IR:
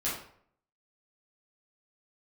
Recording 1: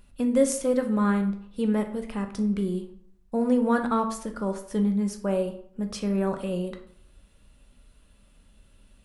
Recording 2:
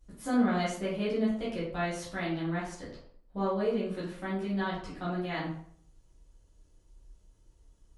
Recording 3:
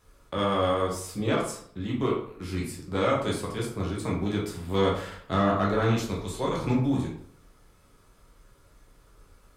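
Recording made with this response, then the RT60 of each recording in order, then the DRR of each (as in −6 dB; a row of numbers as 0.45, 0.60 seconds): 2; 0.60, 0.60, 0.60 seconds; 5.0, −9.0, −4.0 decibels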